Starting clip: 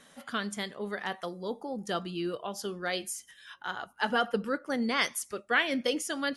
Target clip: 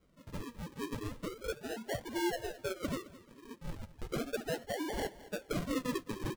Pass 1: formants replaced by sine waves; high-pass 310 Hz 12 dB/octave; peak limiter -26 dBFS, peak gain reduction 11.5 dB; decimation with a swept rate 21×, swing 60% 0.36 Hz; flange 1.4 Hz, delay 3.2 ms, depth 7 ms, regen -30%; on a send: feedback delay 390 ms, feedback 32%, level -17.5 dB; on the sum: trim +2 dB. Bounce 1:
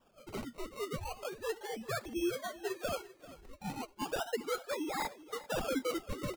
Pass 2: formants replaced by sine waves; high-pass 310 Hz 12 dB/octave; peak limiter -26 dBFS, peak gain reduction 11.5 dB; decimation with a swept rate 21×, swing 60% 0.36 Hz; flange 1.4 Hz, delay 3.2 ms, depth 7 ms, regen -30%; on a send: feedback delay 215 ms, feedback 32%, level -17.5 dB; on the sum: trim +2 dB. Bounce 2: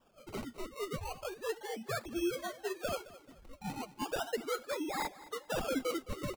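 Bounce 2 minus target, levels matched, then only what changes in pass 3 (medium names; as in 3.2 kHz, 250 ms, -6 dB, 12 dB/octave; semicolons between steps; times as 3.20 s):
decimation with a swept rate: distortion -13 dB
change: decimation with a swept rate 49×, swing 60% 0.36 Hz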